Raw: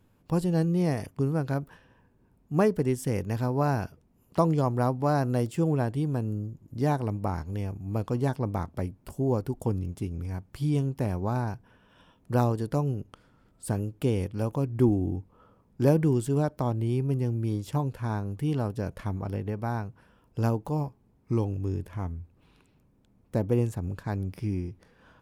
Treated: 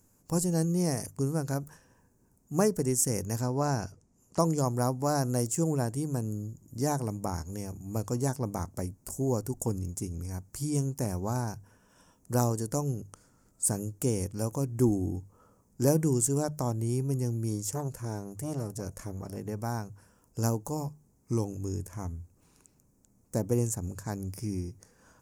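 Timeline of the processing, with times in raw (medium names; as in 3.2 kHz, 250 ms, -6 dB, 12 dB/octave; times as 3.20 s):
3.41–4.40 s: low-pass 7.2 kHz
17.67–19.37 s: transformer saturation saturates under 490 Hz
whole clip: resonant high shelf 4.8 kHz +12.5 dB, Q 3; hum notches 50/100/150 Hz; trim -2.5 dB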